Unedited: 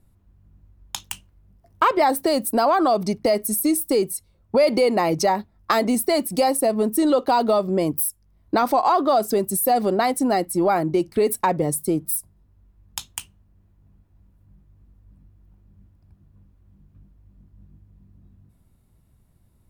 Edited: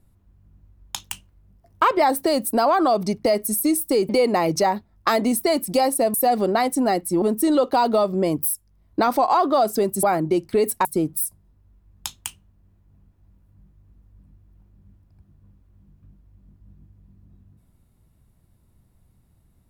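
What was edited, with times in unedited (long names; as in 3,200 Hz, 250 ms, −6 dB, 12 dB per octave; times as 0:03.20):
0:04.09–0:04.72: remove
0:09.58–0:10.66: move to 0:06.77
0:11.48–0:11.77: remove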